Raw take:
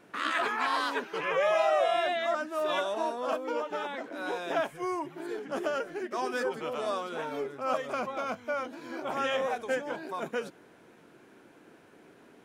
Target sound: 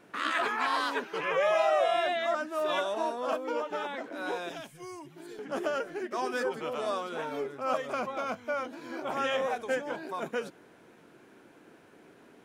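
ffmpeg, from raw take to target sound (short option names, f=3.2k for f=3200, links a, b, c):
-filter_complex "[0:a]asettb=1/sr,asplit=3[a][b][c];[a]atrim=end=4.494[d];[b]atrim=start=4.49:end=5.39,asetpts=PTS-STARTPTS,afade=t=in:d=0.004:c=qsin,afade=t=out:st=0.896:d=0.004:c=qsin,acrossover=split=220|3000[e][f][g];[f]acompressor=threshold=-56dB:ratio=2[h];[e][h][g]amix=inputs=3:normalize=0[i];[c]atrim=start=5.386[j];[d][i]acrossfade=d=0.004:c1=hsin:c2=qsin[k];[k][j]acrossfade=d=0.004:c1=qsin:c2=hsin"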